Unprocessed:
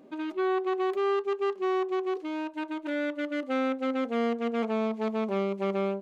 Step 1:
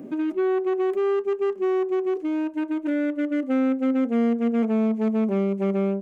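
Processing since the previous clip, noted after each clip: graphic EQ 125/250/1000/4000 Hz +7/+6/-6/-11 dB; three bands compressed up and down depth 40%; trim +2.5 dB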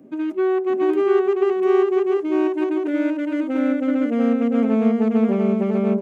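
peak limiter -17.5 dBFS, peak gain reduction 4 dB; on a send: delay 696 ms -3.5 dB; on the sum: three bands expanded up and down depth 70%; trim +4 dB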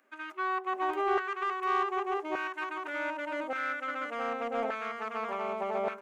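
LFO high-pass saw down 0.85 Hz 730–1500 Hz; in parallel at -4 dB: saturation -24 dBFS, distortion -13 dB; on the sum: trim -7.5 dB

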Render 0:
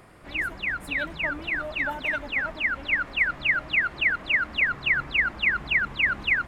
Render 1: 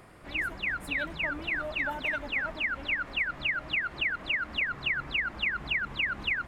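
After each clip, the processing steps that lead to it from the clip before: compression, threshold -25 dBFS, peak gain reduction 7.5 dB; trim -1.5 dB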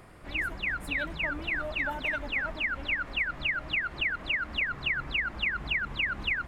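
bass shelf 72 Hz +7.5 dB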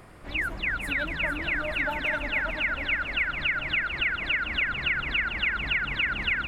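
two-band feedback delay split 1.4 kHz, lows 223 ms, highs 446 ms, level -8.5 dB; trim +2.5 dB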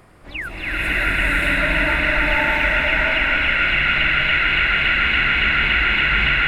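swelling reverb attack 610 ms, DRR -10 dB

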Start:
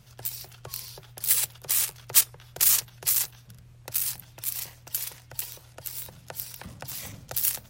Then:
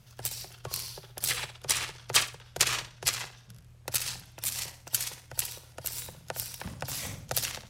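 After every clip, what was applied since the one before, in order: low-pass that closes with the level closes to 2.8 kHz, closed at -20 dBFS; flutter echo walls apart 10.4 m, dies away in 0.44 s; upward expansion 1.5:1, over -49 dBFS; trim +8.5 dB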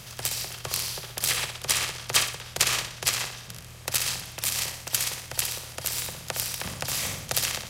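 spectral levelling over time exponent 0.6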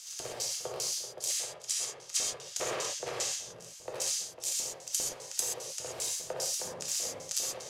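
LFO band-pass square 2.5 Hz 500–6600 Hz; gain riding within 5 dB 0.5 s; gated-style reverb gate 150 ms flat, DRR -2 dB; trim -1.5 dB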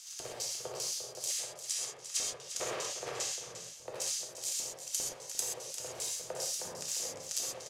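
delay 350 ms -11 dB; trim -3 dB

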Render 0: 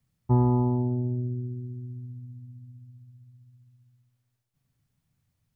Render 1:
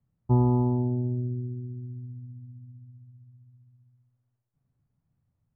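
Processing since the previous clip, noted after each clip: low-pass 1.1 kHz 12 dB/octave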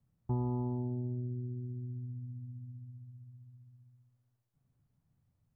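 compression 2:1, threshold -40 dBFS, peak gain reduction 12.5 dB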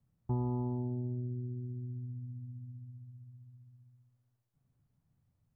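no audible change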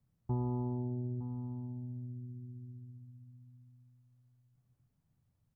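delay 911 ms -13 dB; trim -1 dB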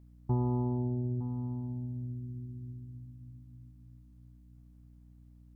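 hum 60 Hz, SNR 19 dB; trim +4.5 dB

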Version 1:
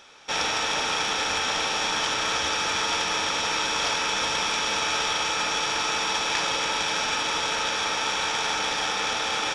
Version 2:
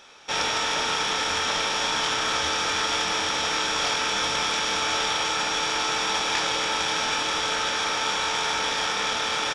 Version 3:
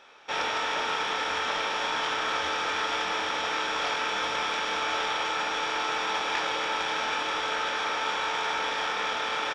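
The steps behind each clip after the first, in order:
doubling 25 ms -7 dB
tone controls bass -9 dB, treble -13 dB; trim -1.5 dB

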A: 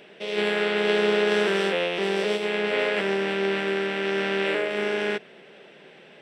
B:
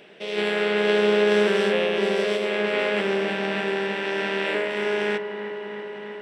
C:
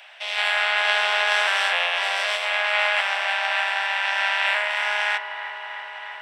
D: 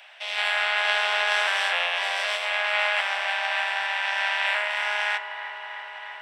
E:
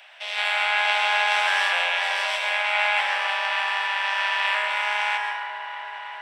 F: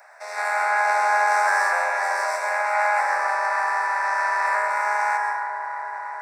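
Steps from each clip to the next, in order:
feedback echo behind a low-pass 322 ms, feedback 80%, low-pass 2.1 kHz, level -9 dB
steep high-pass 700 Hz 48 dB/octave; trim +6.5 dB
de-hum 343.2 Hz, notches 27; trim -2.5 dB
plate-style reverb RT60 1.1 s, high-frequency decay 0.55×, pre-delay 110 ms, DRR 3.5 dB
Butterworth band-stop 3.1 kHz, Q 0.75; trim +5.5 dB

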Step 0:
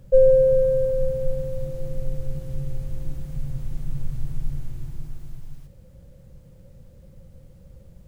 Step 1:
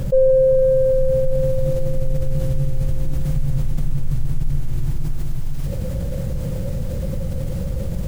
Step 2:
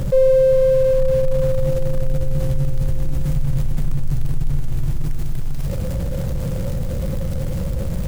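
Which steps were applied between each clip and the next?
level flattener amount 70%; trim -1.5 dB
jump at every zero crossing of -31 dBFS

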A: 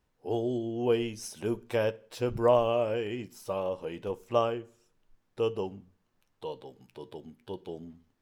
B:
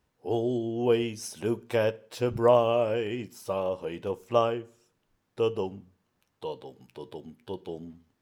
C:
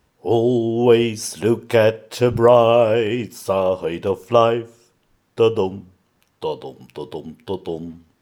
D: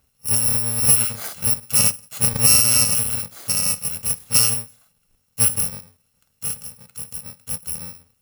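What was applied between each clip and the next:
high-pass 44 Hz; trim +2.5 dB
loudness maximiser +12 dB; trim -1 dB
bit-reversed sample order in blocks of 128 samples; trim -2.5 dB

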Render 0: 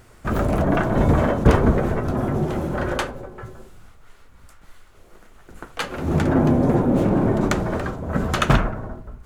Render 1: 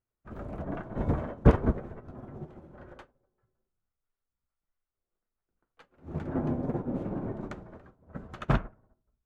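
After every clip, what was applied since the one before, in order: low-pass 1.8 kHz 6 dB/octave; upward expansion 2.5:1, over -35 dBFS; trim -2 dB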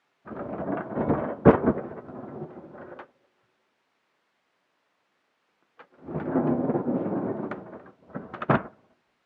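added noise white -71 dBFS; band-pass 210–2100 Hz; trim +8 dB

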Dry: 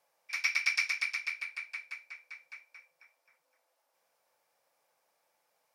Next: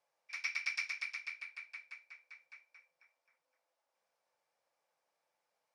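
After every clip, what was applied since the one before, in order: Bessel low-pass 7.2 kHz, order 2; trim -7.5 dB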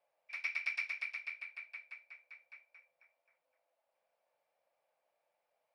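fifteen-band graphic EQ 630 Hz +11 dB, 2.5 kHz +5 dB, 6.3 kHz -10 dB; trim -3.5 dB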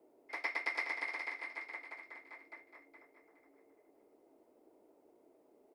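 graphic EQ 500/1000/2000/4000 Hz +9/+11/-8/-5 dB; feedback delay 418 ms, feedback 30%, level -8 dB; frequency shift -230 Hz; trim +6 dB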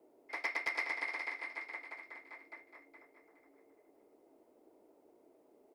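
overload inside the chain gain 27.5 dB; trim +1 dB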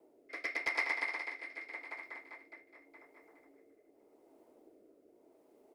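rotary cabinet horn 0.85 Hz; trim +3.5 dB

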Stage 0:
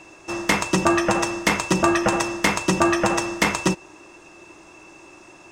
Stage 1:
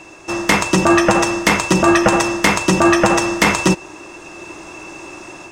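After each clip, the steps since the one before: level rider gain up to 6 dB; loudness maximiser +7 dB; trim -1 dB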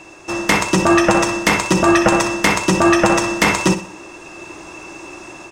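feedback delay 62 ms, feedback 38%, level -11.5 dB; trim -1 dB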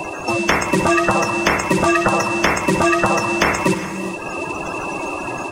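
coarse spectral quantiser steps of 30 dB; gated-style reverb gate 440 ms flat, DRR 12 dB; three bands compressed up and down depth 70%; trim -1.5 dB

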